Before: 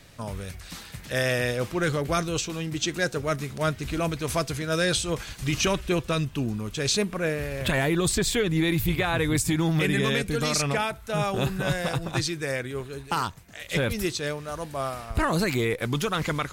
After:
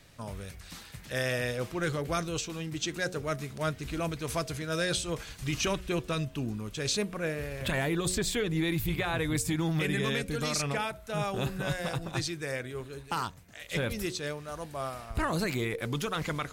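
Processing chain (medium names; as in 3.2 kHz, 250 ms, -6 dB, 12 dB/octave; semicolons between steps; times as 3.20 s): de-hum 91.45 Hz, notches 8; trim -5.5 dB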